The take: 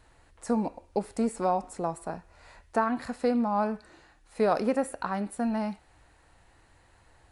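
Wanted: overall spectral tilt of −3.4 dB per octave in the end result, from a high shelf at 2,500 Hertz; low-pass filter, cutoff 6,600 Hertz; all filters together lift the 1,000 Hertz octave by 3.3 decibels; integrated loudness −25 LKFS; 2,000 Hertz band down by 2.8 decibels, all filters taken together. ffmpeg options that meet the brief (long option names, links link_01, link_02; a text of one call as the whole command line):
ffmpeg -i in.wav -af "lowpass=6600,equalizer=frequency=1000:width_type=o:gain=6,equalizer=frequency=2000:width_type=o:gain=-5,highshelf=frequency=2500:gain=-4.5,volume=3.5dB" out.wav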